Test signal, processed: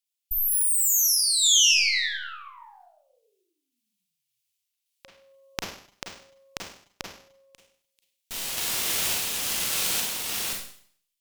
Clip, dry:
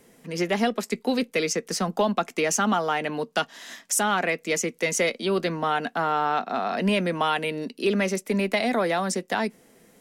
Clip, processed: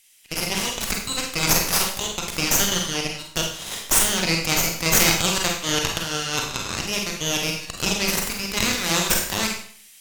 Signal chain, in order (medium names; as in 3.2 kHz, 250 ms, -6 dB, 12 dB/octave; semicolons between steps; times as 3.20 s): Chebyshev high-pass 2.7 kHz, order 3; in parallel at 0 dB: compressor with a negative ratio -41 dBFS, ratio -1; on the sum: Chebyshev shaper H 5 -11 dB, 7 -13 dB, 8 -8 dB, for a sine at -11 dBFS; random-step tremolo 3.5 Hz; Schroeder reverb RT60 0.55 s, combs from 33 ms, DRR 0.5 dB; trim +4.5 dB